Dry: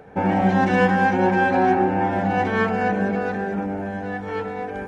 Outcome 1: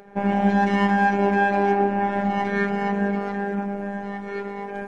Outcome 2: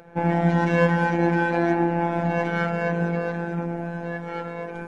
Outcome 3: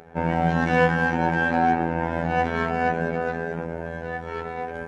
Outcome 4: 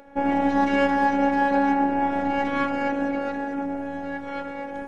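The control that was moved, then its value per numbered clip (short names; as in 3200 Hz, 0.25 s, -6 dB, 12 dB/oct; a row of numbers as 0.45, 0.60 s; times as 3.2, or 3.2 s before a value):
robotiser, frequency: 200, 170, 83, 280 Hz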